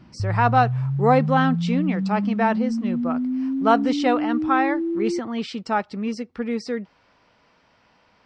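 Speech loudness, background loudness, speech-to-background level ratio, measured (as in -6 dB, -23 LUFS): -23.5 LUFS, -25.0 LUFS, 1.5 dB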